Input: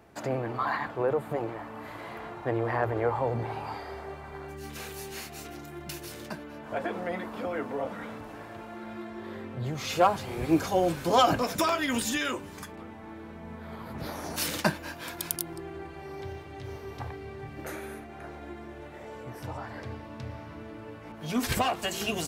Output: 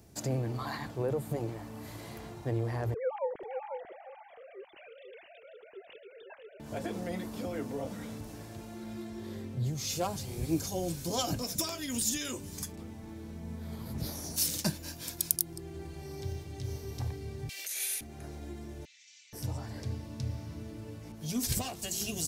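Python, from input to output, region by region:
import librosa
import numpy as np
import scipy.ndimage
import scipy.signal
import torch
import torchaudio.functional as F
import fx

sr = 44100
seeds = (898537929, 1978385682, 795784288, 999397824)

y = fx.chain(x, sr, fx.sine_speech(),
    fx.echo_single(ms=495, db=-8.0), at=(2.94, 6.6))
y = fx.chain(y, sr, fx.bessel_highpass(hz=770.0, order=6),
    fx.high_shelf_res(hz=1700.0, db=13.5, q=1.5),
    fx.over_compress(threshold_db=-35.0, ratio=-0.5), at=(17.49, 18.01))
y = fx.chain(y, sr, fx.cheby1_bandpass(low_hz=2200.0, high_hz=6600.0, order=3),
    fx.env_flatten(amount_pct=100), at=(18.85, 19.33))
y = fx.curve_eq(y, sr, hz=(120.0, 1300.0, 2900.0, 5700.0), db=(0, -17, -9, 4))
y = fx.rider(y, sr, range_db=3, speed_s=0.5)
y = F.gain(torch.from_numpy(y), 2.0).numpy()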